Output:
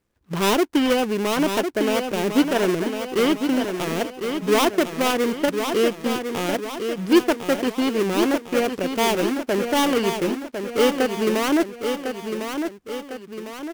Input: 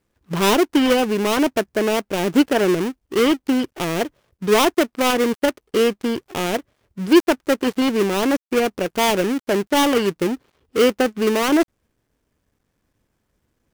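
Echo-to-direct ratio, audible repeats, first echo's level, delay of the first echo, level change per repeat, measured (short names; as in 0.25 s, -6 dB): -6.0 dB, 3, -7.0 dB, 1.053 s, -6.0 dB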